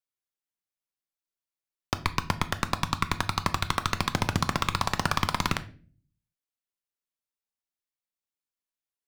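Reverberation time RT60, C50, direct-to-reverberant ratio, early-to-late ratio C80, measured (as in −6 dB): 0.40 s, 16.5 dB, 10.5 dB, 21.0 dB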